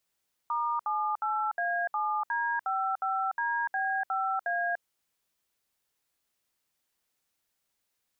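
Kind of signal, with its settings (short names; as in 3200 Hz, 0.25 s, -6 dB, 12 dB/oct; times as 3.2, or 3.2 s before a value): DTMF "*78A7D55DB5A", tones 0.294 s, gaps 66 ms, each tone -29.5 dBFS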